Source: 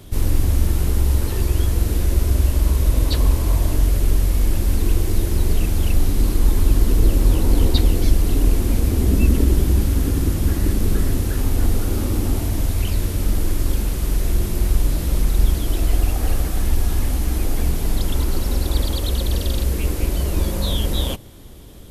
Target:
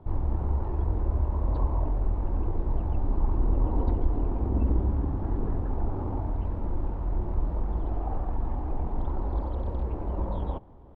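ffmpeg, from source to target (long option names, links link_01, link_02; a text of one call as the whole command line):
ffmpeg -i in.wav -af "atempo=2,lowpass=frequency=910:width_type=q:width=3.5,volume=-9dB" out.wav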